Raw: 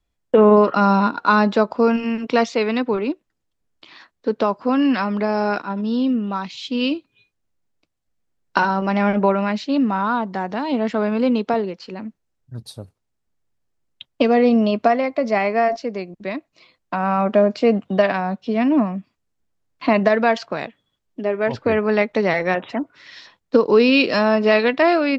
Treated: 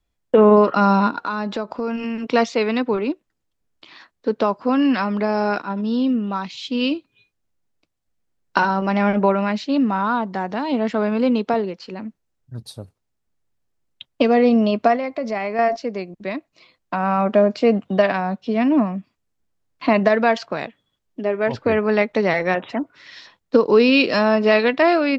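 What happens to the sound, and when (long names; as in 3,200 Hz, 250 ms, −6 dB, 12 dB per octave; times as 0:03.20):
0:01.23–0:02.33: downward compressor 4 to 1, threshold −22 dBFS
0:14.96–0:15.59: downward compressor 2 to 1, threshold −24 dBFS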